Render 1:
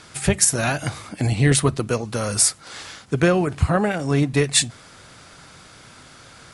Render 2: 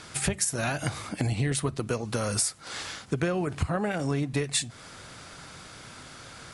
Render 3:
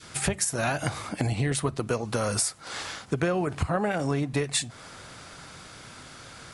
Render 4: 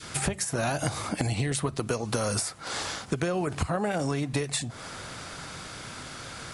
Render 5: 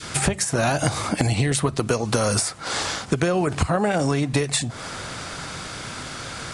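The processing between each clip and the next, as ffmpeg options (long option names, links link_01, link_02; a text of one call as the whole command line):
ffmpeg -i in.wav -af "acompressor=threshold=-25dB:ratio=5" out.wav
ffmpeg -i in.wav -af "adynamicequalizer=threshold=0.00562:dfrequency=820:dqfactor=0.72:tfrequency=820:tqfactor=0.72:attack=5:release=100:ratio=0.375:range=2:mode=boostabove:tftype=bell" out.wav
ffmpeg -i in.wav -filter_complex "[0:a]acrossover=split=1200|3700[link_01][link_02][link_03];[link_01]acompressor=threshold=-31dB:ratio=4[link_04];[link_02]acompressor=threshold=-45dB:ratio=4[link_05];[link_03]acompressor=threshold=-36dB:ratio=4[link_06];[link_04][link_05][link_06]amix=inputs=3:normalize=0,volume=5dB" out.wav
ffmpeg -i in.wav -af "aresample=22050,aresample=44100,volume=7dB" out.wav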